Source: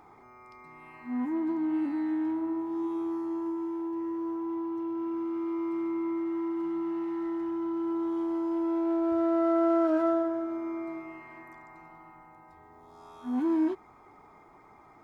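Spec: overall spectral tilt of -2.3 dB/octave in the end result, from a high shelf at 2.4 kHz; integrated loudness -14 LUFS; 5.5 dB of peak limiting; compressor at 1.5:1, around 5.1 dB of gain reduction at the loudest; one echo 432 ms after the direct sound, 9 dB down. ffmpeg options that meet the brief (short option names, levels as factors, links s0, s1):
-af "highshelf=f=2400:g=6,acompressor=threshold=0.0158:ratio=1.5,alimiter=level_in=1.5:limit=0.0631:level=0:latency=1,volume=0.668,aecho=1:1:432:0.355,volume=10.6"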